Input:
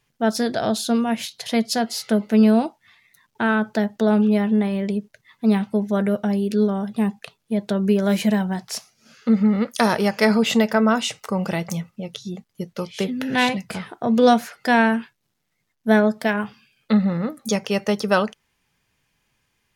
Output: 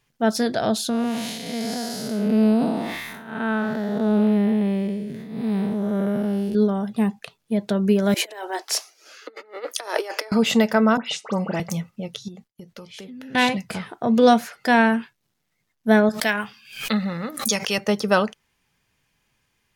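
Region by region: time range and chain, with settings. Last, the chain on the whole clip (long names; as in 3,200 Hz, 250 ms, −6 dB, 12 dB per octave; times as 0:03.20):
0:00.89–0:06.55: spectrum smeared in time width 272 ms + high-shelf EQ 9,400 Hz +5.5 dB + level that may fall only so fast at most 34 dB per second
0:08.14–0:10.32: compressor whose output falls as the input rises −24 dBFS, ratio −0.5 + Butterworth high-pass 310 Hz 72 dB per octave
0:10.97–0:11.60: high-pass filter 160 Hz 24 dB per octave + high-frequency loss of the air 63 metres + all-pass dispersion highs, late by 100 ms, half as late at 2,700 Hz
0:12.28–0:13.35: downward expander −55 dBFS + downward compressor, threshold −37 dBFS
0:16.09–0:17.78: tilt shelving filter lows −6.5 dB, about 1,100 Hz + background raised ahead of every attack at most 110 dB per second
whole clip: no processing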